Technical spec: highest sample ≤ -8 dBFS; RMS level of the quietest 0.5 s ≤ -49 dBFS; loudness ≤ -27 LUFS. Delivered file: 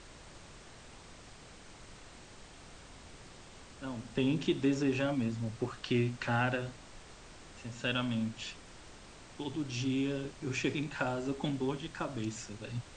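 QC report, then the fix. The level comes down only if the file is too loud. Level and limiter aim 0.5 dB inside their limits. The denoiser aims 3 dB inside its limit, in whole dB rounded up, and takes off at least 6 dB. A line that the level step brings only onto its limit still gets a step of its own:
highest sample -18.5 dBFS: OK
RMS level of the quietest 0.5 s -53 dBFS: OK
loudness -35.0 LUFS: OK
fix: none

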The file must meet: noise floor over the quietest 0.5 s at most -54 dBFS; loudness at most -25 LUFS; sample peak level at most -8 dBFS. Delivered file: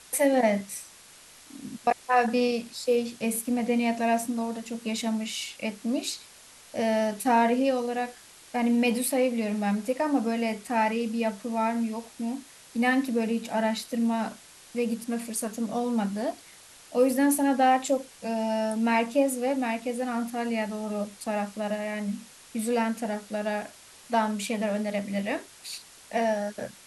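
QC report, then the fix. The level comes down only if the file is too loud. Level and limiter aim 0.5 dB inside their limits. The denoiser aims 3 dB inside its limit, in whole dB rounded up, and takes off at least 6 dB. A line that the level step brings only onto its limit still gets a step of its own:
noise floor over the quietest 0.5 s -51 dBFS: fail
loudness -27.5 LUFS: OK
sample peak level -11.0 dBFS: OK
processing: denoiser 6 dB, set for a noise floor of -51 dBFS

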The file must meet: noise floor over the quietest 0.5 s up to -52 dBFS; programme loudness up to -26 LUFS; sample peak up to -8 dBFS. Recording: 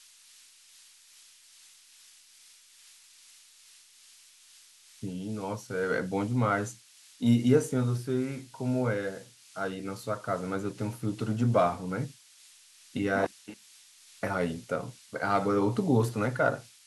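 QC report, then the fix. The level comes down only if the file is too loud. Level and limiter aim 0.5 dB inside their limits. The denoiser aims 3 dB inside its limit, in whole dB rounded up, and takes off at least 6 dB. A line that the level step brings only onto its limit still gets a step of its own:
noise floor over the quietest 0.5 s -57 dBFS: OK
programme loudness -30.0 LUFS: OK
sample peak -9.5 dBFS: OK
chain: none

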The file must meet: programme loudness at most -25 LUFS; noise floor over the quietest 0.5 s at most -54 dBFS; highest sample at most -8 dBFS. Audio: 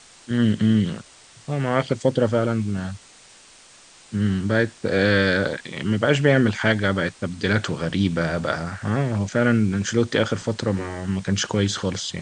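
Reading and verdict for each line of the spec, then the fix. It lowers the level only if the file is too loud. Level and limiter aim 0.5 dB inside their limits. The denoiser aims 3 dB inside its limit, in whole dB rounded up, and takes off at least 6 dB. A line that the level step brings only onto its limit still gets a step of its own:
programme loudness -22.5 LUFS: fail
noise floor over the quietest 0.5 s -49 dBFS: fail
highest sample -4.0 dBFS: fail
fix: denoiser 6 dB, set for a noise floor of -49 dBFS; gain -3 dB; limiter -8.5 dBFS

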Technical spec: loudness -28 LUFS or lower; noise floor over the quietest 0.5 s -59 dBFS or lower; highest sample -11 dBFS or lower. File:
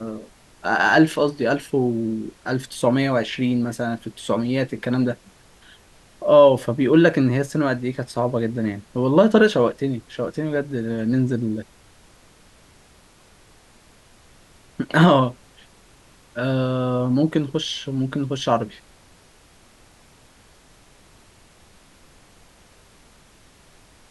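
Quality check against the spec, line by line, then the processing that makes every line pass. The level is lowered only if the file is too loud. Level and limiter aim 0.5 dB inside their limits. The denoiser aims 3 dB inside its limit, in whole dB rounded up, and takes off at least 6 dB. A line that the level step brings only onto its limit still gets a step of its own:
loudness -20.5 LUFS: fail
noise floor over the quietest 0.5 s -52 dBFS: fail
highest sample -3.0 dBFS: fail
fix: gain -8 dB; limiter -11.5 dBFS

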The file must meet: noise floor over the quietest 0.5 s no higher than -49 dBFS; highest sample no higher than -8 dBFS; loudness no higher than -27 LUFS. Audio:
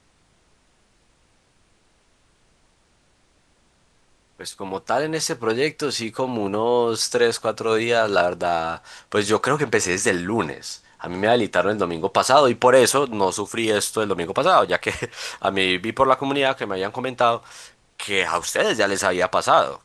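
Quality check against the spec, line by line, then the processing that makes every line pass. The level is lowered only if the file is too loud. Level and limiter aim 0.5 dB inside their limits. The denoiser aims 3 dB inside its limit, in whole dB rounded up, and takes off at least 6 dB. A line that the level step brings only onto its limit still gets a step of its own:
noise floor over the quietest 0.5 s -61 dBFS: OK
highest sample -2.0 dBFS: fail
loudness -20.5 LUFS: fail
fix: gain -7 dB

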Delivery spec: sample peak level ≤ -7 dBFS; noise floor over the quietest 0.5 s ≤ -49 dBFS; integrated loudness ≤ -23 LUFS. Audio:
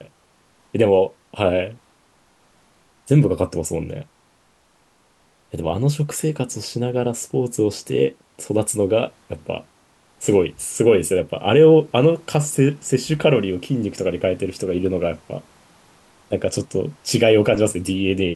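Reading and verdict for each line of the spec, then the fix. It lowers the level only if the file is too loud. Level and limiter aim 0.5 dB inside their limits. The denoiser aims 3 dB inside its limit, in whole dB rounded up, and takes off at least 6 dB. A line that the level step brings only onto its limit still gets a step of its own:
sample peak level -3.5 dBFS: fail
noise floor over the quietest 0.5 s -59 dBFS: OK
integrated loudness -20.0 LUFS: fail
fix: gain -3.5 dB; limiter -7.5 dBFS

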